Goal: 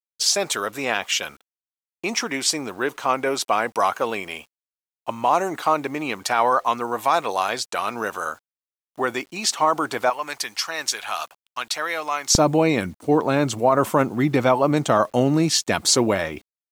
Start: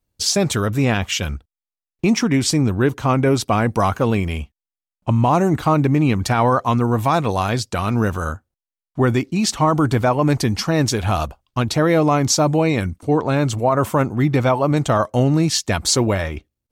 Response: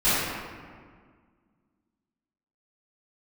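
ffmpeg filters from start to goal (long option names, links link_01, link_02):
-af "asetnsamples=nb_out_samples=441:pad=0,asendcmd='10.1 highpass f 1200;12.35 highpass f 200',highpass=550,acrusher=bits=8:mix=0:aa=0.000001"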